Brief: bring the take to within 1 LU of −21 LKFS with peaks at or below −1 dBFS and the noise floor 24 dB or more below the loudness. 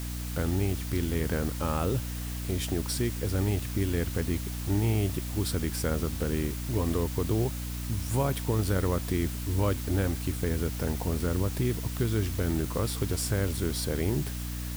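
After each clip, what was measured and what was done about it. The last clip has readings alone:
mains hum 60 Hz; hum harmonics up to 300 Hz; level of the hum −33 dBFS; background noise floor −35 dBFS; target noise floor −54 dBFS; integrated loudness −30.0 LKFS; sample peak −14.0 dBFS; target loudness −21.0 LKFS
→ mains-hum notches 60/120/180/240/300 Hz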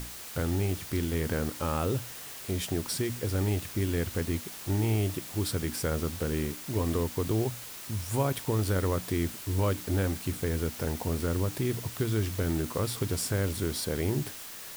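mains hum none found; background noise floor −43 dBFS; target noise floor −55 dBFS
→ broadband denoise 12 dB, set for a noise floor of −43 dBFS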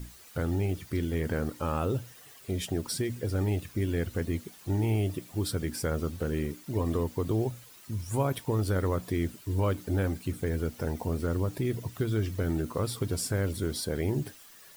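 background noise floor −52 dBFS; target noise floor −56 dBFS
→ broadband denoise 6 dB, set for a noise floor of −52 dBFS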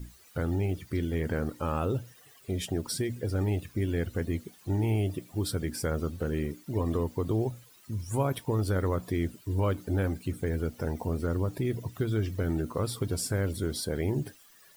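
background noise floor −57 dBFS; integrated loudness −31.5 LKFS; sample peak −16.5 dBFS; target loudness −21.0 LKFS
→ level +10.5 dB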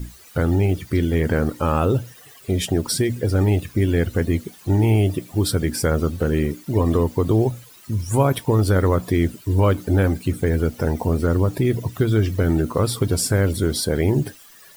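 integrated loudness −21.0 LKFS; sample peak −6.0 dBFS; background noise floor −47 dBFS

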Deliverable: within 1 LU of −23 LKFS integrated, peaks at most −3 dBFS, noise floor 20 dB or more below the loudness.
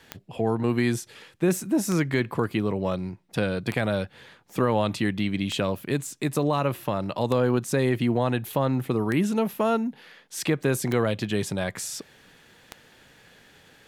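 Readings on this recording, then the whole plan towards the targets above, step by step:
number of clicks 8; integrated loudness −26.0 LKFS; sample peak −9.5 dBFS; target loudness −23.0 LKFS
→ click removal
level +3 dB

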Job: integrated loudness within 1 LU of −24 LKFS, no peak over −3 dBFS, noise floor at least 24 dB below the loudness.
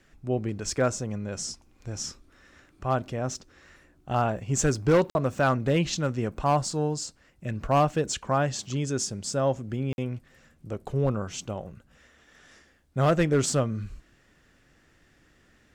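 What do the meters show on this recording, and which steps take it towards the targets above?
share of clipped samples 0.5%; peaks flattened at −15.0 dBFS; number of dropouts 2; longest dropout 51 ms; integrated loudness −27.5 LKFS; sample peak −15.0 dBFS; target loudness −24.0 LKFS
→ clipped peaks rebuilt −15 dBFS
repair the gap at 0:05.10/0:09.93, 51 ms
level +3.5 dB

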